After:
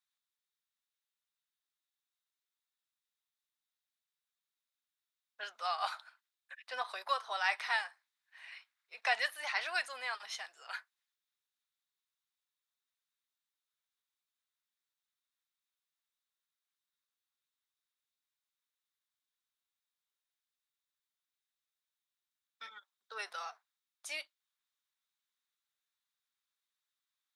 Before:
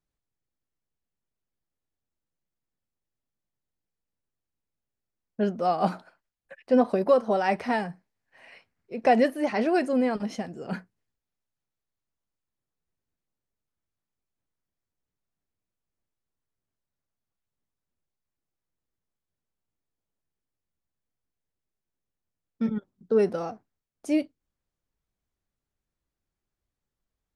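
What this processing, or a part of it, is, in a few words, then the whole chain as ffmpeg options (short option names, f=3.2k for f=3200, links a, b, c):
headphones lying on a table: -af "highpass=f=1.1k:w=0.5412,highpass=f=1.1k:w=1.3066,equalizer=f=3.7k:t=o:w=0.27:g=10.5"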